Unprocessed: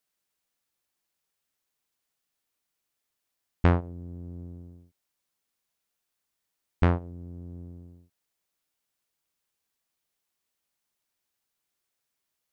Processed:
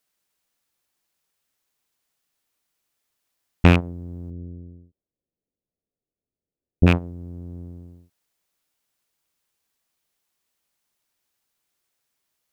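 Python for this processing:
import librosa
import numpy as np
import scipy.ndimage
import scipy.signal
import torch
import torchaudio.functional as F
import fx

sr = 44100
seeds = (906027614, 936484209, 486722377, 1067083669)

y = fx.rattle_buzz(x, sr, strikes_db=-26.0, level_db=-14.0)
y = fx.cheby2_lowpass(y, sr, hz=1400.0, order=4, stop_db=50, at=(4.3, 6.87))
y = fx.dynamic_eq(y, sr, hz=200.0, q=1.2, threshold_db=-36.0, ratio=4.0, max_db=5)
y = y * librosa.db_to_amplitude(5.0)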